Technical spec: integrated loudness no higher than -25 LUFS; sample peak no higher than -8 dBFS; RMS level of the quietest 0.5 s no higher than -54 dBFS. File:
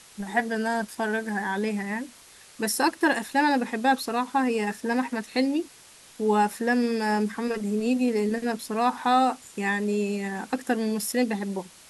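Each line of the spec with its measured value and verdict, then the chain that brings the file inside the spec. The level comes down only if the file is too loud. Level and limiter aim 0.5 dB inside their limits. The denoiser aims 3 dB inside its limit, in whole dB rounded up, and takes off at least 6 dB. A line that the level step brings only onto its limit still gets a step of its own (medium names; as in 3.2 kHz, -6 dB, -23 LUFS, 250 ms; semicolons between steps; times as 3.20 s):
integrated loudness -26.0 LUFS: pass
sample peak -10.5 dBFS: pass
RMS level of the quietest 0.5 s -51 dBFS: fail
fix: noise reduction 6 dB, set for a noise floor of -51 dBFS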